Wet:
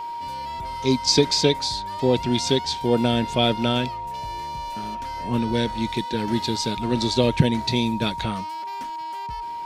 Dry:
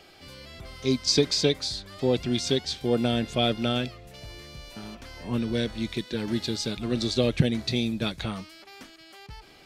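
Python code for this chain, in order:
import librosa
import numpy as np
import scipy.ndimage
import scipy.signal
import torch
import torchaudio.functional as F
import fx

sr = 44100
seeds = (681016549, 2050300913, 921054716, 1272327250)

y = x + 10.0 ** (-33.0 / 20.0) * np.sin(2.0 * np.pi * 940.0 * np.arange(len(x)) / sr)
y = y * librosa.db_to_amplitude(4.0)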